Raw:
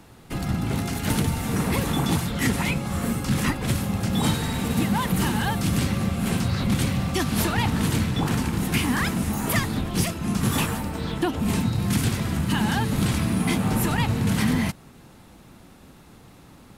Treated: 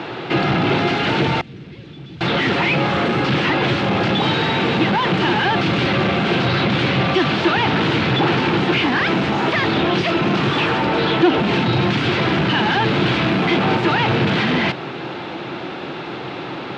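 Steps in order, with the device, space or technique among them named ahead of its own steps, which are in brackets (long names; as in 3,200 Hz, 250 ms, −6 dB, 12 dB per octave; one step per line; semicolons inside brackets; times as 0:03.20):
overdrive pedal into a guitar cabinet (mid-hump overdrive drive 34 dB, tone 5,500 Hz, clips at −9.5 dBFS; loudspeaker in its box 110–3,700 Hz, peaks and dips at 130 Hz +6 dB, 230 Hz −5 dB, 350 Hz +8 dB, 1,100 Hz −4 dB, 1,900 Hz −3 dB)
0:01.41–0:02.21: guitar amp tone stack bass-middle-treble 10-0-1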